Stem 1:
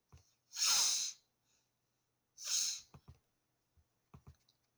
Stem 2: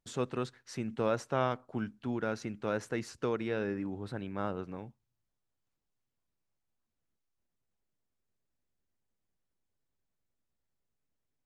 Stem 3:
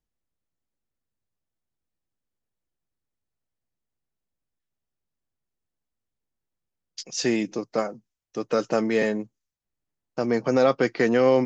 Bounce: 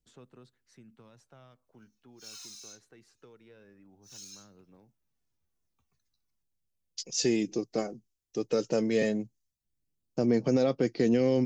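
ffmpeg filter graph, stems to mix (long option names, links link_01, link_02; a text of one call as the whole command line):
ffmpeg -i stem1.wav -i stem2.wav -i stem3.wav -filter_complex "[0:a]tiltshelf=frequency=640:gain=-7.5,acompressor=threshold=-28dB:ratio=6,asplit=2[link_01][link_02];[link_02]adelay=2.3,afreqshift=-2.8[link_03];[link_01][link_03]amix=inputs=2:normalize=1,adelay=1650,volume=-13dB[link_04];[1:a]highpass=120,acrossover=split=210|3000[link_05][link_06][link_07];[link_06]acompressor=threshold=-38dB:ratio=6[link_08];[link_05][link_08][link_07]amix=inputs=3:normalize=0,volume=-17.5dB[link_09];[2:a]equalizer=frequency=1200:width_type=o:width=2:gain=-15,volume=1dB[link_10];[link_04][link_09][link_10]amix=inputs=3:normalize=0,aphaser=in_gain=1:out_gain=1:delay=2.7:decay=0.31:speed=0.19:type=sinusoidal,alimiter=limit=-15.5dB:level=0:latency=1:release=296" out.wav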